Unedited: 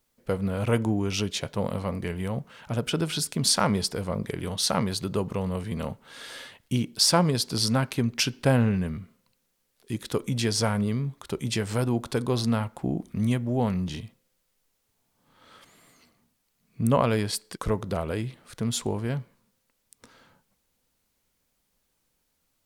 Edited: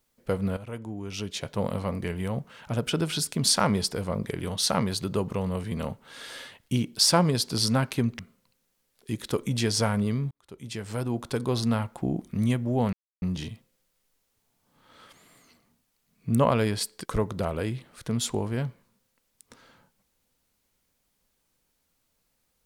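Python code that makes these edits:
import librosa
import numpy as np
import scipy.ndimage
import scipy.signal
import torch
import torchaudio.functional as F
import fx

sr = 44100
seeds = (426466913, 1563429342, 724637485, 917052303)

y = fx.edit(x, sr, fx.fade_in_from(start_s=0.57, length_s=1.03, curve='qua', floor_db=-14.5),
    fx.cut(start_s=8.19, length_s=0.81),
    fx.fade_in_span(start_s=11.12, length_s=1.73, curve='qsin'),
    fx.insert_silence(at_s=13.74, length_s=0.29), tone=tone)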